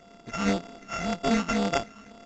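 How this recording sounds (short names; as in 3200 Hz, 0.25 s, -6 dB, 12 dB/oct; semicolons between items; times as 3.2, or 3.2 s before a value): a buzz of ramps at a fixed pitch in blocks of 64 samples; phasing stages 8, 1.9 Hz, lowest notch 570–3700 Hz; aliases and images of a low sample rate 4100 Hz, jitter 0%; A-law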